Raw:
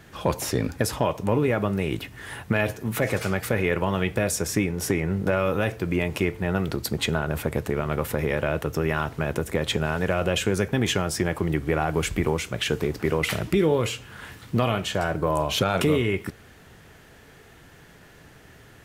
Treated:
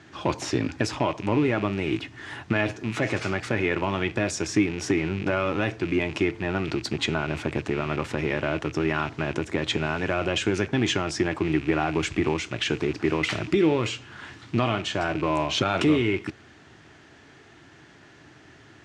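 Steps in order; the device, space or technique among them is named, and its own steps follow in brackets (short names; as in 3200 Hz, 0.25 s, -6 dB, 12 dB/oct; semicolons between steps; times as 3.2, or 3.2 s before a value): car door speaker with a rattle (rattling part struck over -34 dBFS, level -27 dBFS; speaker cabinet 99–6800 Hz, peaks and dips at 180 Hz -6 dB, 320 Hz +7 dB, 490 Hz -8 dB)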